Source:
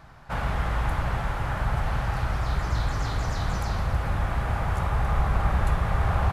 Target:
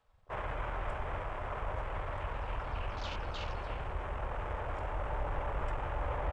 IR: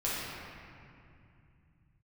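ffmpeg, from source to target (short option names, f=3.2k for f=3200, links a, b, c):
-filter_complex "[0:a]asetrate=32097,aresample=44100,atempo=1.37395,lowshelf=f=430:g=-6.5,acrossover=split=330|900|1400[a][b][c][d];[d]acontrast=21[e];[a][b][c][e]amix=inputs=4:normalize=0,afwtdn=0.0112,volume=-6dB"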